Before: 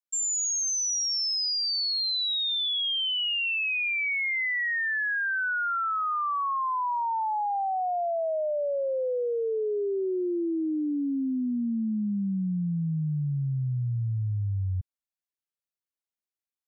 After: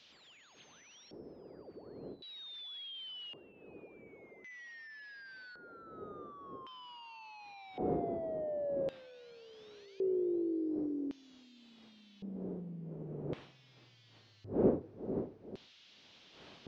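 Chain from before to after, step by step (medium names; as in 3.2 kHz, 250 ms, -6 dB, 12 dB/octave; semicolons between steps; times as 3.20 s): one-bit delta coder 32 kbps, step -46.5 dBFS; wind noise 260 Hz -31 dBFS; on a send: filtered feedback delay 443 ms, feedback 50%, level -13 dB; on the sum: LFO band-pass square 0.45 Hz 430–3300 Hz; trim -3 dB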